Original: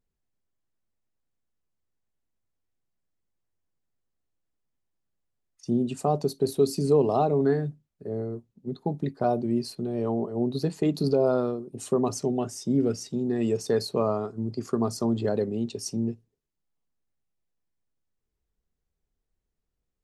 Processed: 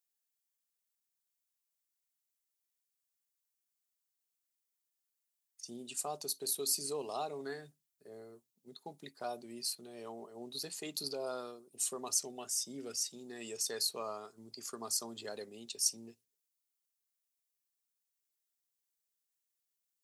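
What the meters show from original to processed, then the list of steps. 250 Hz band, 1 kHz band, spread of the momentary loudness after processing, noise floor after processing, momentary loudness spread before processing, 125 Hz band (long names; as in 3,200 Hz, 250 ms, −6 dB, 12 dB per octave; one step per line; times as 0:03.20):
−23.0 dB, −13.0 dB, 18 LU, below −85 dBFS, 10 LU, −28.5 dB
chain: first difference
level +5.5 dB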